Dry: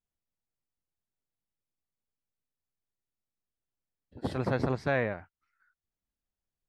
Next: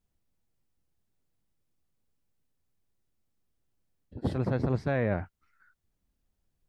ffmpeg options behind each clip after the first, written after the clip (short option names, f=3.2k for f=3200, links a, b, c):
-af "lowshelf=f=480:g=10,areverse,acompressor=threshold=-30dB:ratio=10,areverse,volume=5.5dB"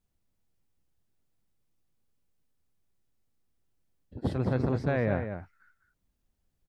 -filter_complex "[0:a]asplit=2[a][b];[b]adelay=204.1,volume=-8dB,highshelf=f=4k:g=-4.59[c];[a][c]amix=inputs=2:normalize=0"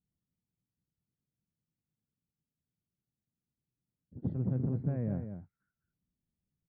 -af "bandpass=f=160:t=q:w=1.5:csg=0" -ar 11025 -c:a libmp3lame -b:a 24k